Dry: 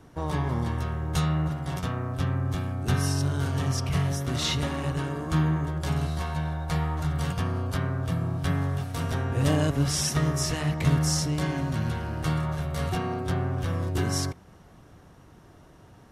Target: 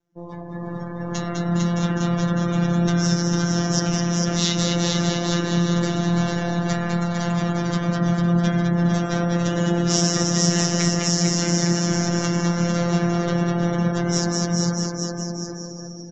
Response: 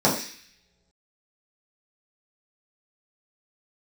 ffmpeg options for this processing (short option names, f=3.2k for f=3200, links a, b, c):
-filter_complex "[0:a]asplit=8[a][b][c][d][e][f][g][h];[b]adelay=204,afreqshift=39,volume=-3.5dB[i];[c]adelay=408,afreqshift=78,volume=-9dB[j];[d]adelay=612,afreqshift=117,volume=-14.5dB[k];[e]adelay=816,afreqshift=156,volume=-20dB[l];[f]adelay=1020,afreqshift=195,volume=-25.6dB[m];[g]adelay=1224,afreqshift=234,volume=-31.1dB[n];[h]adelay=1428,afreqshift=273,volume=-36.6dB[o];[a][i][j][k][l][m][n][o]amix=inputs=8:normalize=0,alimiter=limit=-19.5dB:level=0:latency=1:release=217,asplit=2[p][q];[1:a]atrim=start_sample=2205,lowpass=4.6k[r];[q][r]afir=irnorm=-1:irlink=0,volume=-27dB[s];[p][s]amix=inputs=2:normalize=0,aresample=16000,aresample=44100,aemphasis=mode=production:type=50fm,aecho=1:1:450|855|1220|1548|1843:0.631|0.398|0.251|0.158|0.1,dynaudnorm=f=490:g=5:m=10dB,afftdn=nr=24:nf=-33,afftfilt=real='hypot(re,im)*cos(PI*b)':imag='0':win_size=1024:overlap=0.75,volume=-1dB"